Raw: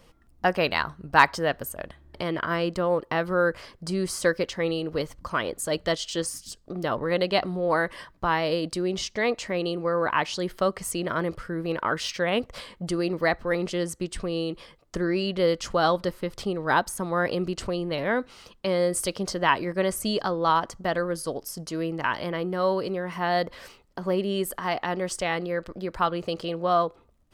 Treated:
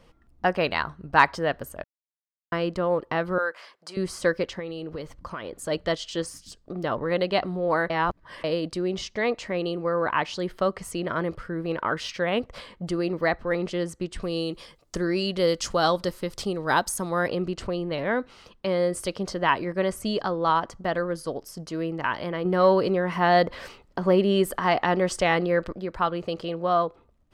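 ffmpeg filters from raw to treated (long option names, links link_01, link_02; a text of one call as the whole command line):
ffmpeg -i in.wav -filter_complex "[0:a]asettb=1/sr,asplit=3[link_01][link_02][link_03];[link_01]atrim=end=3.384[link_04];[link_02]atrim=start=3.38:end=3.97,asetpts=PTS-STARTPTS,afade=type=in:duration=0.004:curve=qsin,afade=type=out:start_time=0.586:duration=0.004:curve=qsin,highpass=720[link_05];[link_03]atrim=start=3.966[link_06];[link_04][link_05]acrossfade=duration=0.004:curve1=hsin:curve2=qsin[link_07];[link_07][link_06]acrossfade=duration=0.004:curve1=qsin:curve2=hsin,asettb=1/sr,asplit=3[link_08][link_09][link_10];[link_08]atrim=end=4.594[link_11];[link_09]atrim=start=4.59:end=5.61,asetpts=PTS-STARTPTS,afade=type=in:duration=0.004:curve=qsin,afade=type=out:start_time=1.016:duration=0.004:curve=qsin,acompressor=threshold=-30dB:ratio=6:attack=3.2:release=140:knee=1:detection=peak[link_12];[link_10]atrim=start=5.606[link_13];[link_11][link_12]acrossfade=duration=0.004:curve1=hsin:curve2=qsin[link_14];[link_14][link_13]acrossfade=duration=0.004:curve1=qsin:curve2=hsin,asettb=1/sr,asplit=3[link_15][link_16][link_17];[link_15]atrim=end=14.224[link_18];[link_16]atrim=start=14.22:end=17.28,asetpts=PTS-STARTPTS,afade=type=in:duration=0.004:curve=qsin,afade=type=out:start_time=3.056:duration=0.004:curve=qsin,bass=frequency=250:gain=0,treble=frequency=4000:gain=13[link_19];[link_17]atrim=start=17.276[link_20];[link_18][link_19]acrossfade=duration=0.004:curve1=hsin:curve2=qsin[link_21];[link_21][link_20]acrossfade=duration=0.004:curve1=qsin:curve2=hsin,asettb=1/sr,asplit=3[link_22][link_23][link_24];[link_22]atrim=end=22.454[link_25];[link_23]atrim=start=22.45:end=25.73,asetpts=PTS-STARTPTS,afade=type=in:duration=0.004:curve=qsin,afade=type=out:start_time=3.276:duration=0.004:curve=qsin,acontrast=48[link_26];[link_24]atrim=start=25.726[link_27];[link_25][link_26]acrossfade=duration=0.004:curve1=hsin:curve2=qsin[link_28];[link_28][link_27]acrossfade=duration=0.004:curve1=qsin:curve2=hsin,asplit=5[link_29][link_30][link_31][link_32][link_33];[link_29]atrim=end=1.84,asetpts=PTS-STARTPTS,afade=type=out:start_time=1.836:duration=0.004:curve=hsin[link_34];[link_30]atrim=start=1.84:end=2.52,asetpts=PTS-STARTPTS,volume=0[link_35];[link_31]atrim=start=2.52:end=7.902,asetpts=PTS-STARTPTS,afade=type=in:duration=0.004:curve=hsin[link_36];[link_32]atrim=start=7.898:end=8.442,asetpts=PTS-STARTPTS,areverse[link_37];[link_33]atrim=start=8.438[link_38];[link_34][link_35][link_36]concat=n=3:v=0:a=1[link_39];[link_39][link_37]acrossfade=duration=0.004:curve1=hsin:curve2=hsin[link_40];[link_40][link_38]acrossfade=duration=0.004:curve1=hsin:curve2=hsin,lowpass=frequency=3800:poles=1" out.wav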